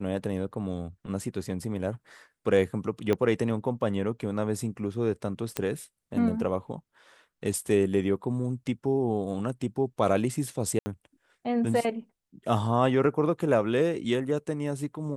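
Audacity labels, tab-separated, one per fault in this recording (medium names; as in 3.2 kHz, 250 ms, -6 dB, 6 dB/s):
3.130000	3.130000	pop -14 dBFS
5.570000	5.570000	pop -12 dBFS
10.790000	10.860000	dropout 70 ms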